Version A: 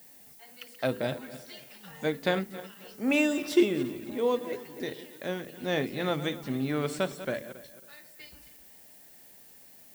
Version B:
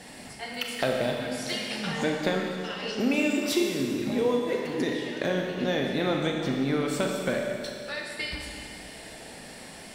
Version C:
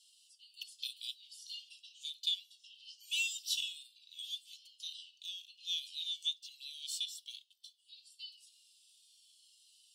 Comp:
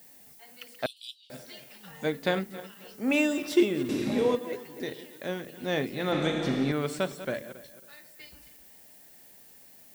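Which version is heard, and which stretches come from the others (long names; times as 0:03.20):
A
0:00.86–0:01.30: punch in from C
0:03.89–0:04.35: punch in from B
0:06.12–0:06.72: punch in from B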